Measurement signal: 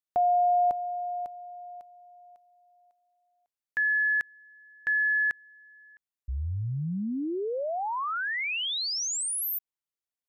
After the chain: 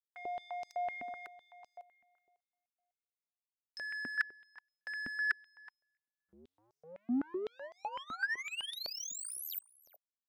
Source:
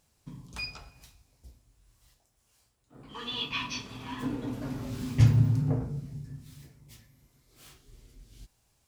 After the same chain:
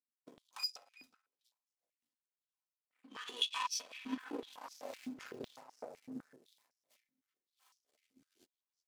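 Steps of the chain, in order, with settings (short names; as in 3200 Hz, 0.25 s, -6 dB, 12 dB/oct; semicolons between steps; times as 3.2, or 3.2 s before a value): comb 3.9 ms, depth 49%; reverse; compressor 16:1, threshold -33 dBFS; reverse; power-law curve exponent 2; outdoor echo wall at 64 m, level -16 dB; stepped high-pass 7.9 Hz 250–5400 Hz; gain +1 dB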